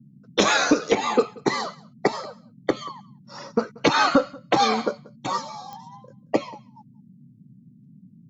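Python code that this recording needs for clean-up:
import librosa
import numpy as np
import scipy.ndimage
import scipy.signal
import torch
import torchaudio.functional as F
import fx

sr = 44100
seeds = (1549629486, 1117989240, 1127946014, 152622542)

y = fx.fix_declick_ar(x, sr, threshold=10.0)
y = fx.noise_reduce(y, sr, print_start_s=7.33, print_end_s=7.83, reduce_db=16.0)
y = fx.fix_echo_inverse(y, sr, delay_ms=184, level_db=-24.0)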